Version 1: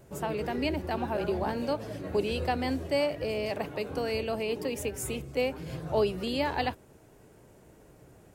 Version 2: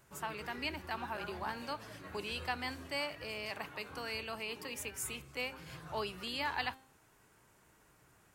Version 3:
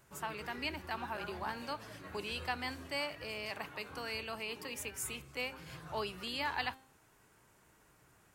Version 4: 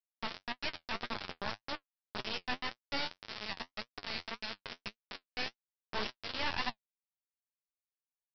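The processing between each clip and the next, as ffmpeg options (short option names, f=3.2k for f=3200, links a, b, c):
-af "lowshelf=f=800:t=q:w=1.5:g=-10,bandreject=f=263.3:t=h:w=4,bandreject=f=526.6:t=h:w=4,bandreject=f=789.9:t=h:w=4,bandreject=f=1.0532k:t=h:w=4,bandreject=f=1.3165k:t=h:w=4,bandreject=f=1.5798k:t=h:w=4,bandreject=f=1.8431k:t=h:w=4,bandreject=f=2.1064k:t=h:w=4,bandreject=f=2.3697k:t=h:w=4,bandreject=f=2.633k:t=h:w=4,bandreject=f=2.8963k:t=h:w=4,bandreject=f=3.1596k:t=h:w=4,bandreject=f=3.4229k:t=h:w=4,bandreject=f=3.6862k:t=h:w=4,bandreject=f=3.9495k:t=h:w=4,bandreject=f=4.2128k:t=h:w=4,bandreject=f=4.4761k:t=h:w=4,volume=-3dB"
-af anull
-af "aresample=11025,acrusher=bits=3:dc=4:mix=0:aa=0.000001,aresample=44100,flanger=delay=7.8:depth=4.8:regen=45:speed=1.8:shape=triangular,volume=7dB"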